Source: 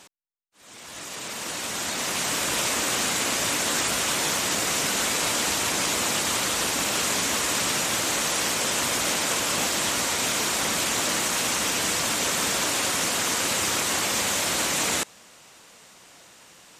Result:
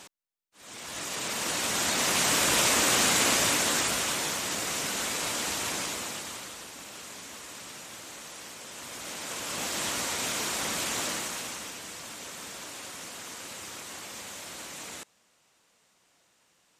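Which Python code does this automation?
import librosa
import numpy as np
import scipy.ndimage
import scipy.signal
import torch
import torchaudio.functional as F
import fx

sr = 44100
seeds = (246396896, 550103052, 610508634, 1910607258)

y = fx.gain(x, sr, db=fx.line((3.29, 1.5), (4.37, -6.5), (5.73, -6.5), (6.67, -18.5), (8.68, -18.5), (9.81, -6.0), (11.03, -6.0), (11.82, -16.5)))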